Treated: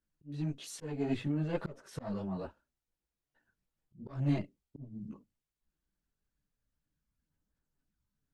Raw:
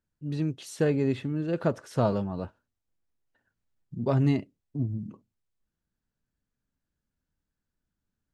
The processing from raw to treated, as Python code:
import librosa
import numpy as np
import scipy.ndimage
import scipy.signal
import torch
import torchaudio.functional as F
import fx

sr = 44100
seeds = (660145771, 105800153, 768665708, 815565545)

y = fx.cheby_harmonics(x, sr, harmonics=(2,), levels_db=(-7,), full_scale_db=-11.0)
y = fx.chorus_voices(y, sr, voices=6, hz=1.1, base_ms=17, depth_ms=3.7, mix_pct=60)
y = fx.auto_swell(y, sr, attack_ms=358.0)